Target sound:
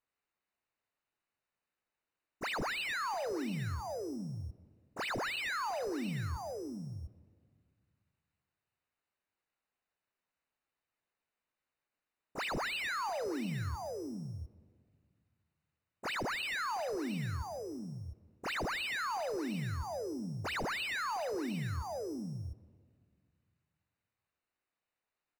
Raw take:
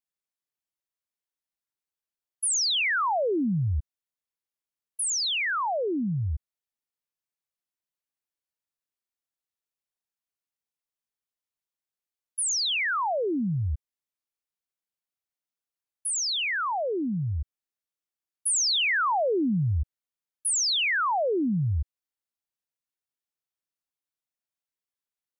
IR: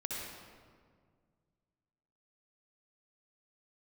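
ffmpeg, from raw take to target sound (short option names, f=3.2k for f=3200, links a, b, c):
-filter_complex "[0:a]aecho=1:1:707:0.237,acrusher=samples=8:mix=1:aa=0.000001,lowshelf=f=420:g=-4,alimiter=level_in=6.5dB:limit=-24dB:level=0:latency=1:release=145,volume=-6.5dB,asoftclip=type=tanh:threshold=-32.5dB,highshelf=f=9.3k:g=-7.5,asplit=3[a][b][c];[b]asetrate=52444,aresample=44100,atempo=0.840896,volume=-12dB[d];[c]asetrate=66075,aresample=44100,atempo=0.66742,volume=-8dB[e];[a][d][e]amix=inputs=3:normalize=0,asplit=2[f][g];[1:a]atrim=start_sample=2205[h];[g][h]afir=irnorm=-1:irlink=0,volume=-21dB[i];[f][i]amix=inputs=2:normalize=0,acrossover=split=5500[j][k];[k]acompressor=threshold=-54dB:ratio=4:attack=1:release=60[l];[j][l]amix=inputs=2:normalize=0,asuperstop=centerf=3300:order=20:qfactor=7.5"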